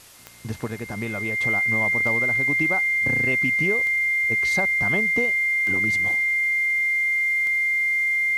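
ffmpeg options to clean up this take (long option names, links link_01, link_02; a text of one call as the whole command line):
ffmpeg -i in.wav -af "adeclick=threshold=4,bandreject=frequency=2100:width=30,afwtdn=0.0045" out.wav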